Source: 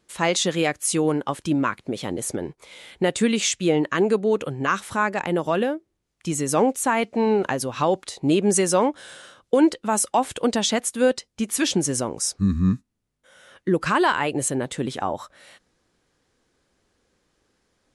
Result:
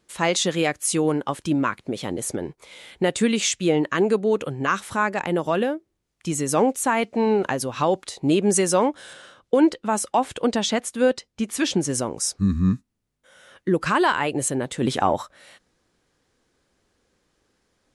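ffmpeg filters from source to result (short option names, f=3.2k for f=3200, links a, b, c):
-filter_complex "[0:a]asettb=1/sr,asplit=3[a][b][c];[a]atrim=end=9.134[d];[b]atrim=start=9.13:end=11.9,asetpts=PTS-STARTPTS,afade=t=in:d=0.004:c=qsin,afade=t=out:st=2.766:d=0.004:c=qsin,highshelf=f=7.5k:g=-9[e];[c]atrim=start=11.896[f];[d][e]acrossfade=d=0.004:c1=hsin:c2=qsin[g];[g][f]acrossfade=d=0.004:c1=qsin:c2=hsin,asplit=3[h][i][j];[h]afade=t=out:st=14.81:d=0.02[k];[i]acontrast=55,afade=t=in:st=14.81:d=0.02,afade=t=out:st=15.21:d=0.02[l];[j]afade=t=in:st=15.21:d=0.02[m];[k][l][m]amix=inputs=3:normalize=0"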